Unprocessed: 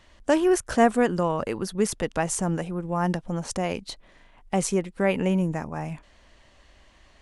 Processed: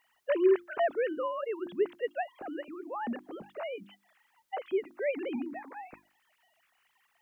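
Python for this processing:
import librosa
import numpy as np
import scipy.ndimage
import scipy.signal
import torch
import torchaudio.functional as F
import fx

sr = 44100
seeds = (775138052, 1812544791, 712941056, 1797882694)

y = fx.sine_speech(x, sr)
y = fx.quant_dither(y, sr, seeds[0], bits=12, dither='triangular')
y = fx.hum_notches(y, sr, base_hz=50, count=7)
y = F.gain(torch.from_numpy(y), -7.5).numpy()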